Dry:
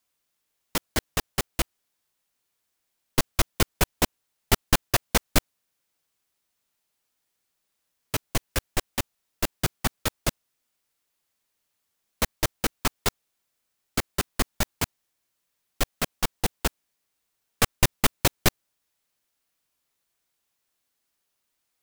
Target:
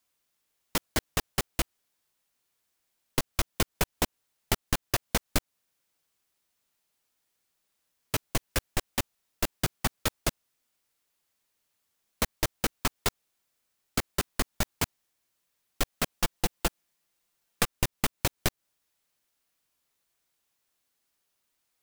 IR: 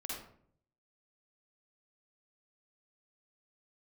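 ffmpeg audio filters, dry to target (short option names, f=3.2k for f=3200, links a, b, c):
-filter_complex "[0:a]acompressor=threshold=-22dB:ratio=12,asettb=1/sr,asplit=3[a][b][c];[a]atrim=end=16.144[d];[b]atrim=start=16.14:end=17.69,asetpts=PTS-STARTPTS,afade=t=in:d=0.004:c=qsin,afade=t=out:st=1.546:d=0.004:c=qsin,aecho=1:1:5.8:0.43,atrim=end_sample=68355[e];[c]atrim=start=17.686[f];[d][e]acrossfade=d=0.004:c1=hsin:c2=qsin[g];[g][f]acrossfade=d=0.004:c1=qsin:c2=hsin"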